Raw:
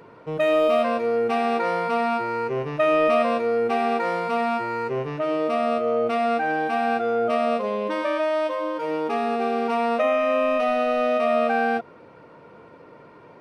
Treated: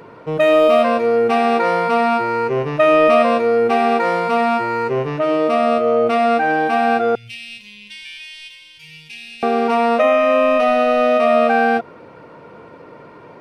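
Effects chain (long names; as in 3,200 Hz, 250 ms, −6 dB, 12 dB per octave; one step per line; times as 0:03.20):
0:07.15–0:09.43: elliptic band-stop filter 130–2,600 Hz, stop band 40 dB
level +7 dB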